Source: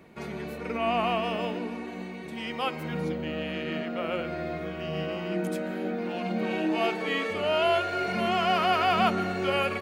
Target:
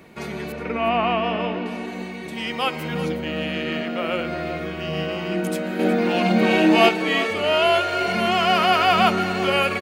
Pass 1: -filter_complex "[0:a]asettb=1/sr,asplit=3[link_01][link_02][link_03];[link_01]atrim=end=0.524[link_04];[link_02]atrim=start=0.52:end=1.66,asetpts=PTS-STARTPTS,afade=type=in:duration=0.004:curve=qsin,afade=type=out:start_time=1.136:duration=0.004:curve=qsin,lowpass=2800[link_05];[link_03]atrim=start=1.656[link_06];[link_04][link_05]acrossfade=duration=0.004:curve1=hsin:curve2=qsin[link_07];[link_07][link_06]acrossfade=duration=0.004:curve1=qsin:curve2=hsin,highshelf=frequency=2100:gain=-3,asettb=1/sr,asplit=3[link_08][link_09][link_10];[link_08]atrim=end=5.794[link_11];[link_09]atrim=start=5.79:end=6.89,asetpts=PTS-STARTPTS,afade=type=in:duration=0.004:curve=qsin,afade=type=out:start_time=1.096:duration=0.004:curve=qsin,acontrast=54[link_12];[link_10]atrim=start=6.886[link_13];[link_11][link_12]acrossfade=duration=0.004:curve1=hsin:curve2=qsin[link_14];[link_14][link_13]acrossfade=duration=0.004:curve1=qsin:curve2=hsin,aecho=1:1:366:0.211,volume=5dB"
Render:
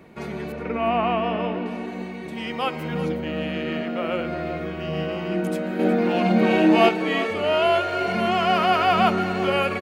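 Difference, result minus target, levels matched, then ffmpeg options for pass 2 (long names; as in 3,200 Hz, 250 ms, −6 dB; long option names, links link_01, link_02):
4,000 Hz band −4.0 dB
-filter_complex "[0:a]asettb=1/sr,asplit=3[link_01][link_02][link_03];[link_01]atrim=end=0.524[link_04];[link_02]atrim=start=0.52:end=1.66,asetpts=PTS-STARTPTS,afade=type=in:duration=0.004:curve=qsin,afade=type=out:start_time=1.136:duration=0.004:curve=qsin,lowpass=2800[link_05];[link_03]atrim=start=1.656[link_06];[link_04][link_05]acrossfade=duration=0.004:curve1=hsin:curve2=qsin[link_07];[link_07][link_06]acrossfade=duration=0.004:curve1=qsin:curve2=hsin,highshelf=frequency=2100:gain=5,asettb=1/sr,asplit=3[link_08][link_09][link_10];[link_08]atrim=end=5.794[link_11];[link_09]atrim=start=5.79:end=6.89,asetpts=PTS-STARTPTS,afade=type=in:duration=0.004:curve=qsin,afade=type=out:start_time=1.096:duration=0.004:curve=qsin,acontrast=54[link_12];[link_10]atrim=start=6.886[link_13];[link_11][link_12]acrossfade=duration=0.004:curve1=hsin:curve2=qsin[link_14];[link_14][link_13]acrossfade=duration=0.004:curve1=qsin:curve2=hsin,aecho=1:1:366:0.211,volume=5dB"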